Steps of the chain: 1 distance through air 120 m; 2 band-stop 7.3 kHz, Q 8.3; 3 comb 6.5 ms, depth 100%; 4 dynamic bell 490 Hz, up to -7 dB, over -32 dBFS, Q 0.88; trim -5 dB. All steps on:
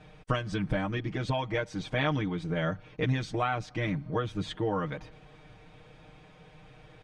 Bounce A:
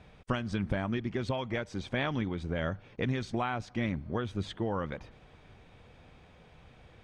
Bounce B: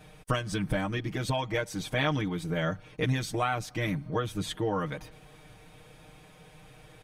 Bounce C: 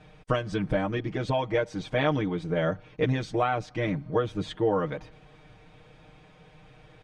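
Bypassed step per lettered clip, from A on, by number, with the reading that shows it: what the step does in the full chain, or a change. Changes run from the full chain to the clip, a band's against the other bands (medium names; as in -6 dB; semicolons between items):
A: 3, 250 Hz band +2.5 dB; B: 1, 8 kHz band +9.5 dB; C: 4, 500 Hz band +5.5 dB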